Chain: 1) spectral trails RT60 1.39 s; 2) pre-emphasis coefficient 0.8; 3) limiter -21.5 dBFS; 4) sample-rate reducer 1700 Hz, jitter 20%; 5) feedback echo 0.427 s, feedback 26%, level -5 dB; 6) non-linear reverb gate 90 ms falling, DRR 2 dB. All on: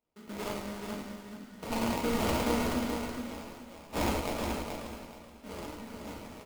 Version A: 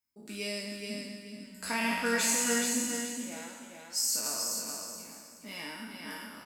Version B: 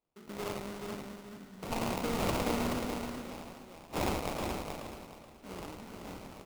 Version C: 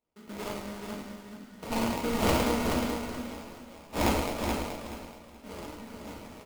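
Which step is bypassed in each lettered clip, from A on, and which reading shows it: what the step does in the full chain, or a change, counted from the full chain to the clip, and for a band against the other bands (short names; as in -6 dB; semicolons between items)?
4, crest factor change +1.5 dB; 6, echo-to-direct 0.5 dB to -4.5 dB; 3, crest factor change +2.0 dB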